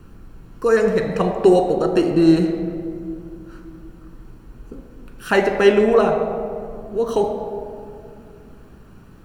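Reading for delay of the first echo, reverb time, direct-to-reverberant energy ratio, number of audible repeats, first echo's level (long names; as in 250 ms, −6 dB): no echo audible, 2.4 s, 4.0 dB, no echo audible, no echo audible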